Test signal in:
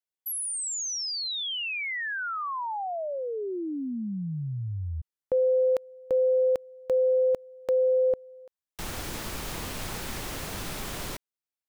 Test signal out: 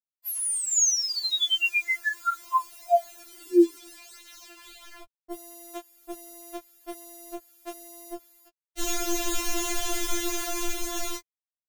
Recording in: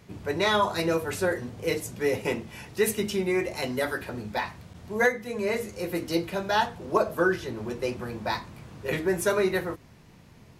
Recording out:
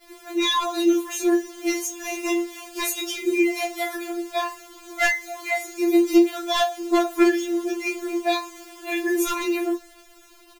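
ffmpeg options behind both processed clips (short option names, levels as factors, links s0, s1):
-filter_complex "[0:a]asplit=2[s0][s1];[s1]adelay=20,volume=0.562[s2];[s0][s2]amix=inputs=2:normalize=0,acrusher=bits=7:mix=0:aa=0.000001,dynaudnorm=f=110:g=21:m=1.41,aeval=exprs='0.211*(abs(mod(val(0)/0.211+3,4)-2)-1)':c=same,adynamicequalizer=threshold=0.00178:dfrequency=6700:dqfactor=5.2:tfrequency=6700:tqfactor=5.2:attack=5:release=100:ratio=0.375:range=4:mode=boostabove:tftype=bell,afftfilt=real='re*4*eq(mod(b,16),0)':imag='im*4*eq(mod(b,16),0)':win_size=2048:overlap=0.75,volume=1.5"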